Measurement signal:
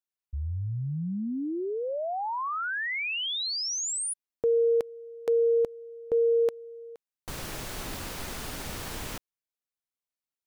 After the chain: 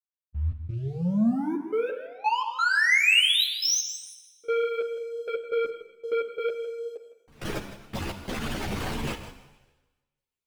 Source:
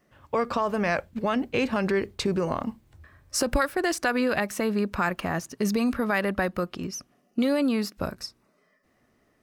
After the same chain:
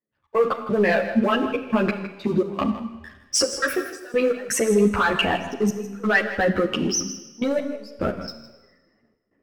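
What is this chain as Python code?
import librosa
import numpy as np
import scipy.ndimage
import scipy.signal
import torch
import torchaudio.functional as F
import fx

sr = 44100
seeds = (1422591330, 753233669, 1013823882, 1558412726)

p1 = fx.envelope_sharpen(x, sr, power=2.0)
p2 = fx.highpass(p1, sr, hz=42.0, slope=6)
p3 = fx.peak_eq(p2, sr, hz=69.0, db=-7.5, octaves=1.2)
p4 = fx.over_compress(p3, sr, threshold_db=-31.0, ratio=-0.5)
p5 = p3 + (p4 * 10.0 ** (-2.5 / 20.0))
p6 = fx.leveller(p5, sr, passes=2)
p7 = fx.peak_eq(p6, sr, hz=2700.0, db=5.0, octaves=1.0)
p8 = fx.step_gate(p7, sr, bpm=87, pattern='..x.xxxxx.x', floor_db=-24.0, edge_ms=4.5)
p9 = p8 + fx.echo_single(p8, sr, ms=160, db=-13.0, dry=0)
p10 = fx.rev_schroeder(p9, sr, rt60_s=1.2, comb_ms=27, drr_db=9.5)
y = fx.ensemble(p10, sr)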